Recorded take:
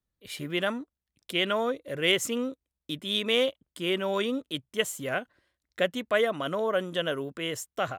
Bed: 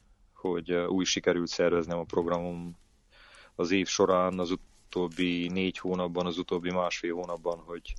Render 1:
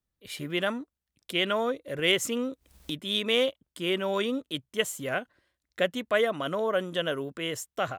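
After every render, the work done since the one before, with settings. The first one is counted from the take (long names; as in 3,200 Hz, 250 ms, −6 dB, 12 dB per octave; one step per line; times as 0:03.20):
0:01.99–0:02.94: upward compression, threshold −29 dBFS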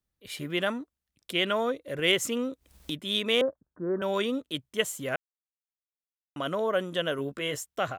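0:03.41–0:04.02: Butterworth low-pass 1,700 Hz 96 dB per octave
0:05.16–0:06.36: silence
0:07.17–0:07.58: double-tracking delay 14 ms −6 dB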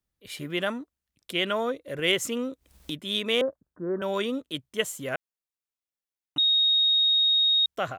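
0:06.38–0:07.66: beep over 3,740 Hz −18.5 dBFS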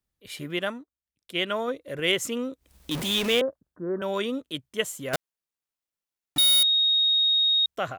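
0:00.59–0:01.68: expander for the loud parts, over −47 dBFS
0:02.91–0:03.40: converter with a step at zero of −26.5 dBFS
0:05.13–0:06.63: each half-wave held at its own peak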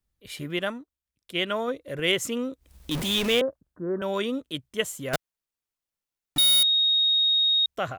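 low-shelf EQ 83 Hz +10 dB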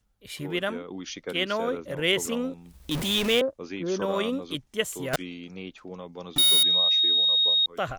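mix in bed −9.5 dB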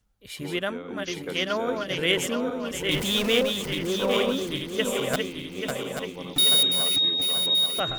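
feedback delay that plays each chunk backwards 417 ms, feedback 71%, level −4.5 dB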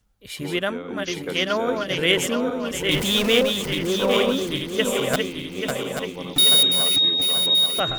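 level +4 dB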